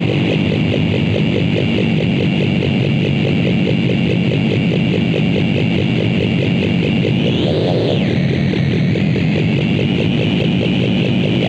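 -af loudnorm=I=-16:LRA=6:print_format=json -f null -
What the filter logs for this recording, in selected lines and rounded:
"input_i" : "-15.2",
"input_tp" : "-3.6",
"input_lra" : "0.1",
"input_thresh" : "-25.2",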